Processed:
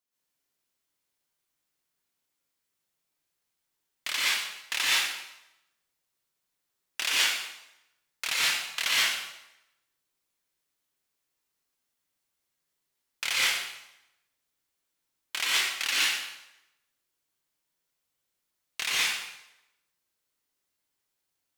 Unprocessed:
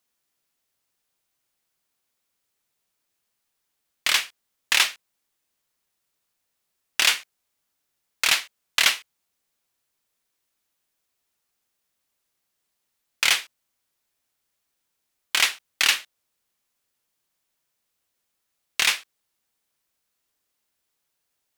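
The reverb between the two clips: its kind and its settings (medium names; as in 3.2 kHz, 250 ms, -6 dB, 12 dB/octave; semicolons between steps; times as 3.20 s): plate-style reverb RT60 0.87 s, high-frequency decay 0.9×, pre-delay 105 ms, DRR -7 dB; trim -11.5 dB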